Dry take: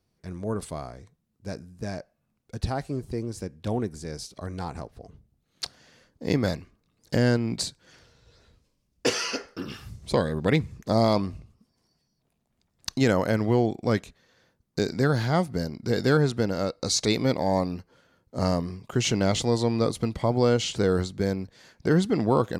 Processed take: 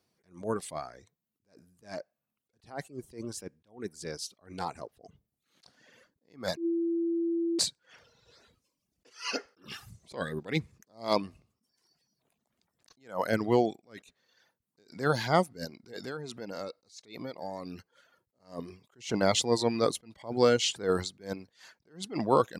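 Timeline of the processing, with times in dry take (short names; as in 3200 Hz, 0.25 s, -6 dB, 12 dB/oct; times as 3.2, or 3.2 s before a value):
6.57–7.59 bleep 336 Hz -23 dBFS
15.74–18.4 compressor 16:1, threshold -31 dBFS
whole clip: HPF 340 Hz 6 dB/oct; reverb removal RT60 0.73 s; attack slew limiter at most 190 dB/s; gain +2.5 dB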